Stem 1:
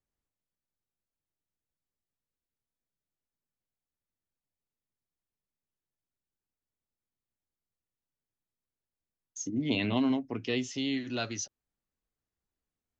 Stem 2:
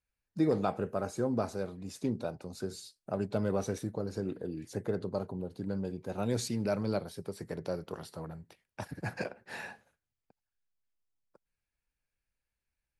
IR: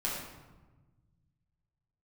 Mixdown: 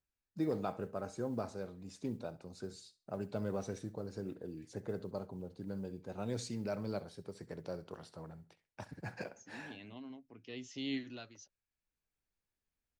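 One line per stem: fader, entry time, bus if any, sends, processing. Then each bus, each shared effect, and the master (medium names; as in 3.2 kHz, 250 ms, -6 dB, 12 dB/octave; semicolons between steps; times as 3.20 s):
-4.5 dB, 0.00 s, no send, no echo send, auto duck -17 dB, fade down 0.40 s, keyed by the second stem
-7.0 dB, 0.00 s, no send, echo send -18 dB, low-pass 8.6 kHz 24 dB/octave; modulation noise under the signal 35 dB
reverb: none
echo: feedback delay 67 ms, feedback 25%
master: none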